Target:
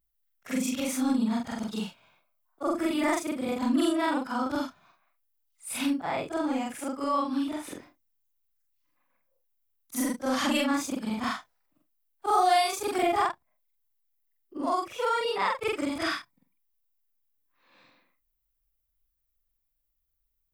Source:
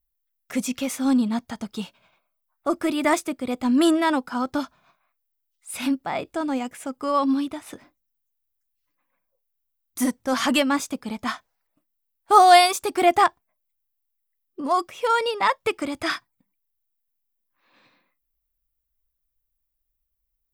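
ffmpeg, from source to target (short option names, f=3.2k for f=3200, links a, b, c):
-filter_complex "[0:a]afftfilt=real='re':imag='-im':win_size=4096:overlap=0.75,acrossover=split=160[a][b];[b]acompressor=threshold=-32dB:ratio=2[c];[a][c]amix=inputs=2:normalize=0,volume=4dB"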